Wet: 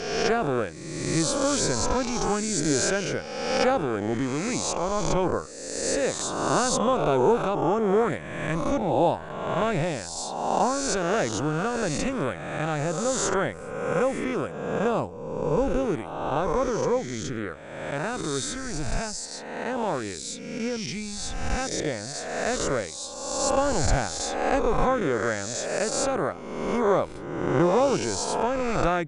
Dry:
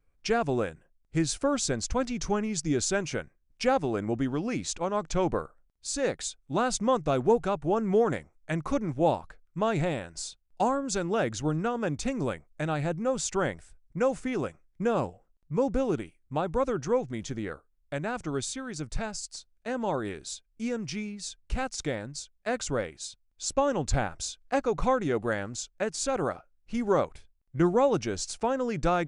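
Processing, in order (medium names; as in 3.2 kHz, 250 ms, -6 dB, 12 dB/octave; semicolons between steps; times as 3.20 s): reverse spectral sustain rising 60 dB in 1.34 s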